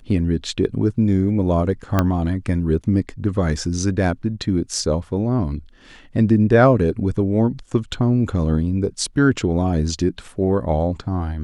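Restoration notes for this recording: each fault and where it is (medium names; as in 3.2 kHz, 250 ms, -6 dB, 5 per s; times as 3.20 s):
1.99 s: pop -4 dBFS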